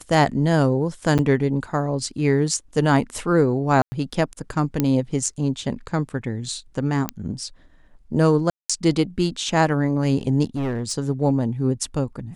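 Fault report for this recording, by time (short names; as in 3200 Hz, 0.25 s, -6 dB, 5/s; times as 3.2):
1.18–1.19 gap 7.8 ms
3.82–3.92 gap 0.1 s
4.8 pop -6 dBFS
7.09 pop -8 dBFS
8.5–8.7 gap 0.195 s
10.46–10.93 clipped -21 dBFS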